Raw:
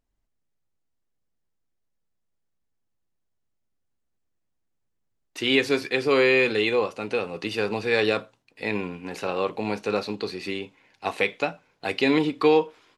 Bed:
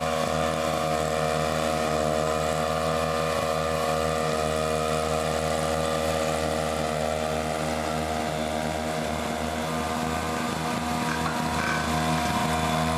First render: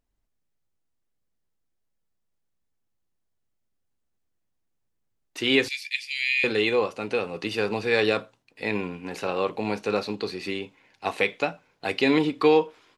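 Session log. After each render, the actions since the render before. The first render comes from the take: 5.68–6.44 steep high-pass 2000 Hz 72 dB/oct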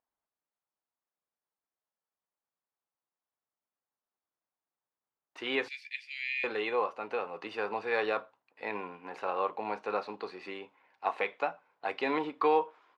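band-pass 990 Hz, Q 1.5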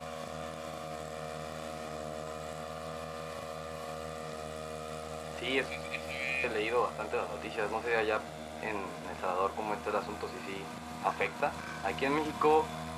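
add bed -15.5 dB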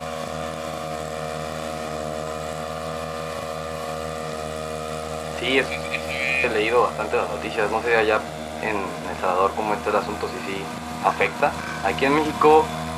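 gain +11.5 dB

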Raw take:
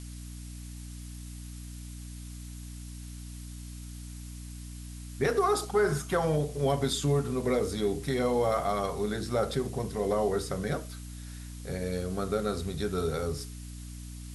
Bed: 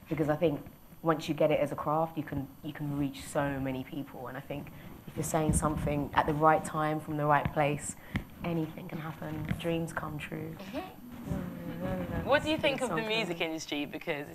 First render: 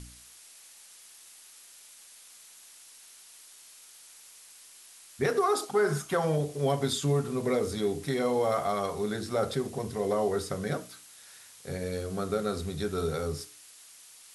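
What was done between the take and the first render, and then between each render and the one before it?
de-hum 60 Hz, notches 5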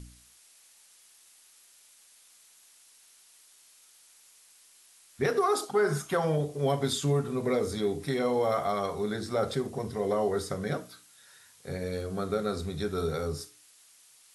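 noise print and reduce 6 dB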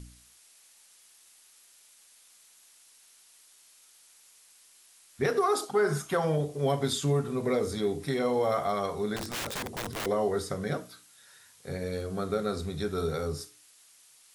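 9.16–10.06 wrapped overs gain 29 dB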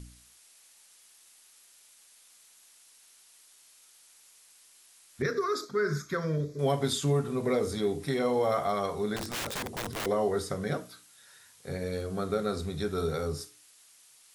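5.22–6.59 fixed phaser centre 2900 Hz, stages 6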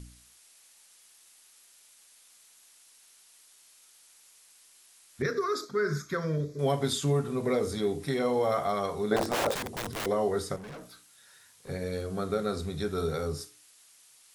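9.11–9.55 bell 610 Hz +14 dB 2 oct; 10.56–11.69 tube stage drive 41 dB, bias 0.35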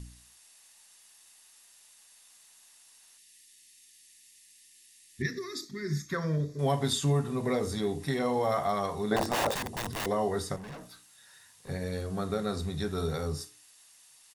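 comb 1.1 ms, depth 31%; 3.17–6.09 spectral gain 390–1700 Hz -16 dB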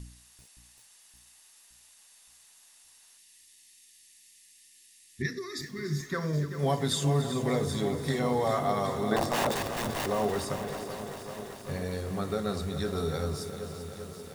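split-band echo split 1000 Hz, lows 0.569 s, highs 0.289 s, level -14 dB; lo-fi delay 0.389 s, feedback 80%, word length 8-bit, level -10.5 dB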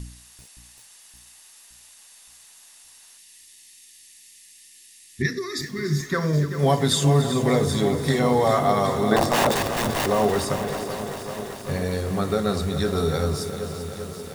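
gain +8 dB

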